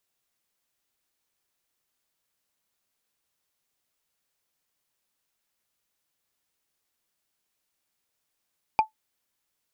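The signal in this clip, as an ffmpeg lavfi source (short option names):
-f lavfi -i "aevalsrc='0.266*pow(10,-3*t/0.12)*sin(2*PI*872*t)+0.0841*pow(10,-3*t/0.036)*sin(2*PI*2404.1*t)+0.0266*pow(10,-3*t/0.016)*sin(2*PI*4712.3*t)+0.00841*pow(10,-3*t/0.009)*sin(2*PI*7789.6*t)+0.00266*pow(10,-3*t/0.005)*sin(2*PI*11632.5*t)':d=0.45:s=44100"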